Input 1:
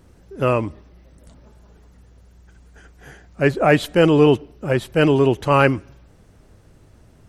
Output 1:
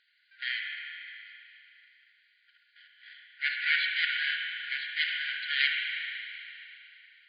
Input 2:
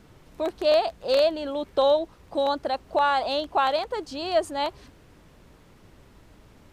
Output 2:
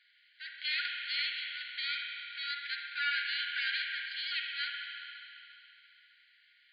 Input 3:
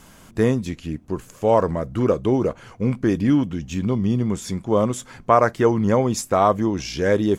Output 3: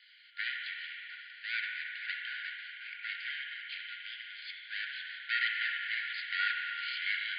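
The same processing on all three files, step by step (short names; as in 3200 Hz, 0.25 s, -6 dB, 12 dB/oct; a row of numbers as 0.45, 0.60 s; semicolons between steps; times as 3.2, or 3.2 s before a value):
minimum comb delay 0.96 ms; spring tank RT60 3 s, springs 32/57 ms, chirp 45 ms, DRR -0.5 dB; FFT band-pass 1400–4900 Hz; gain -2 dB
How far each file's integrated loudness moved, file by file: -12.0, -9.5, -15.0 LU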